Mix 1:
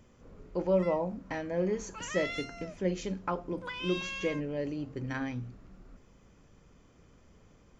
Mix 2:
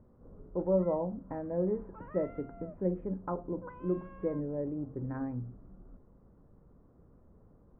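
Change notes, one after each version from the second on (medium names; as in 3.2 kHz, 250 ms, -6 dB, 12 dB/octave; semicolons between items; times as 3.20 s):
master: add Bessel low-pass 820 Hz, order 6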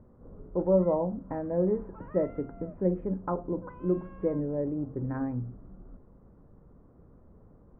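speech +4.5 dB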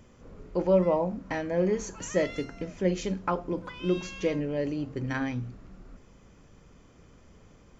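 background -5.0 dB; master: remove Bessel low-pass 820 Hz, order 6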